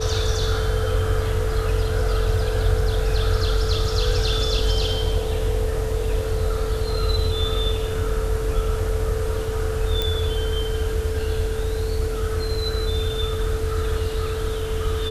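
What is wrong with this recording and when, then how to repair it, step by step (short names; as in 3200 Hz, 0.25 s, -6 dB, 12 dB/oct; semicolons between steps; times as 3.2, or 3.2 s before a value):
tone 440 Hz -27 dBFS
10.02 pop -9 dBFS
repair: de-click; notch 440 Hz, Q 30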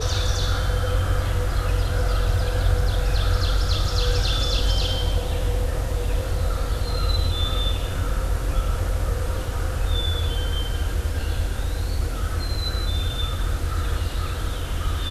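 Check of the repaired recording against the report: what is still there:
none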